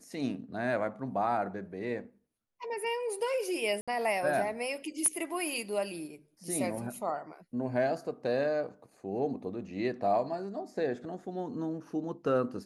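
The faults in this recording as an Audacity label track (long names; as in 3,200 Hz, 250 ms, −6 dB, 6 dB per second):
3.810000	3.880000	drop-out 66 ms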